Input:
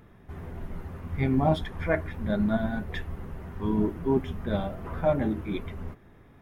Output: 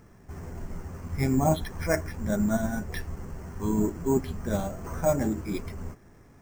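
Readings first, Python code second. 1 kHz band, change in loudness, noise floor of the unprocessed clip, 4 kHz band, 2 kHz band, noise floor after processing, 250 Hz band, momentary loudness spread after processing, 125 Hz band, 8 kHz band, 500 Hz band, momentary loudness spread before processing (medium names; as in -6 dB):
0.0 dB, 0.0 dB, -54 dBFS, -1.0 dB, -1.0 dB, -54 dBFS, 0.0 dB, 15 LU, 0.0 dB, no reading, 0.0 dB, 15 LU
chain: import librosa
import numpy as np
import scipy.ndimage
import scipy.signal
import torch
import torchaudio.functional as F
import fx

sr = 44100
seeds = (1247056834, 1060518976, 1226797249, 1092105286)

y = np.repeat(scipy.signal.resample_poly(x, 1, 6), 6)[:len(x)]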